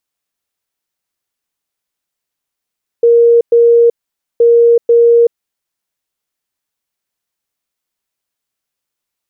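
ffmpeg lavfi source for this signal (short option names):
-f lavfi -i "aevalsrc='0.631*sin(2*PI*469*t)*clip(min(mod(mod(t,1.37),0.49),0.38-mod(mod(t,1.37),0.49))/0.005,0,1)*lt(mod(t,1.37),0.98)':d=2.74:s=44100"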